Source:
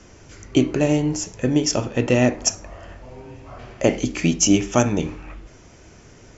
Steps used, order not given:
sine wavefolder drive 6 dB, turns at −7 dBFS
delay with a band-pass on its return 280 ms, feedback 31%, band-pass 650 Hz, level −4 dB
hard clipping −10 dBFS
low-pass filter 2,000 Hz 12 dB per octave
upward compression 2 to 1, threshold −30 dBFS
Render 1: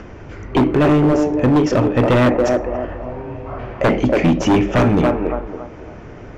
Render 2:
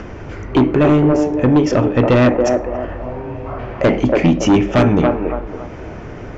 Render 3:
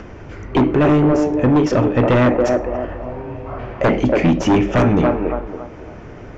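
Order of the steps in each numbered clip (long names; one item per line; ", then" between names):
delay with a band-pass on its return, then sine wavefolder, then upward compression, then low-pass filter, then hard clipping
upward compression, then delay with a band-pass on its return, then hard clipping, then low-pass filter, then sine wavefolder
delay with a band-pass on its return, then sine wavefolder, then hard clipping, then low-pass filter, then upward compression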